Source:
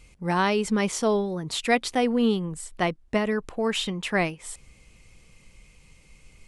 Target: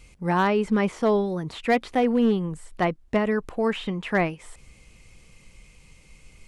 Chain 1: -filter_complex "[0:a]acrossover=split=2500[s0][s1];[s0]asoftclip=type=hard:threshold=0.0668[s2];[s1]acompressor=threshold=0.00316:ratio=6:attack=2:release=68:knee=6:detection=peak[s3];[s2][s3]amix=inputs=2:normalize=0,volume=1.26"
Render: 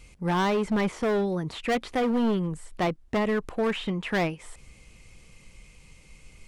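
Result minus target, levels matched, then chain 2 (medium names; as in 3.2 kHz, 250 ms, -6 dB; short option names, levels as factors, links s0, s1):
hard clipper: distortion +14 dB
-filter_complex "[0:a]acrossover=split=2500[s0][s1];[s0]asoftclip=type=hard:threshold=0.158[s2];[s1]acompressor=threshold=0.00316:ratio=6:attack=2:release=68:knee=6:detection=peak[s3];[s2][s3]amix=inputs=2:normalize=0,volume=1.26"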